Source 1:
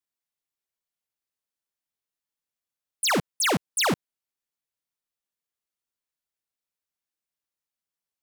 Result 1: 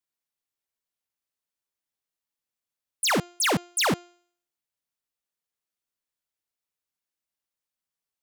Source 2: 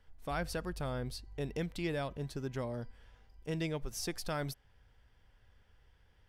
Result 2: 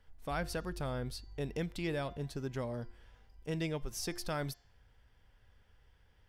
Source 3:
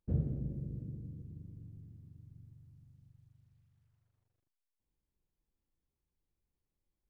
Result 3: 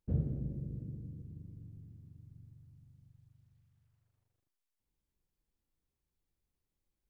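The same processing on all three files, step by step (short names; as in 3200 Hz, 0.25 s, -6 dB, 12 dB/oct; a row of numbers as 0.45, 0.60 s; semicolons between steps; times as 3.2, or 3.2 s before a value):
de-hum 350.3 Hz, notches 21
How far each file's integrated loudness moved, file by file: 0.0, 0.0, 0.0 LU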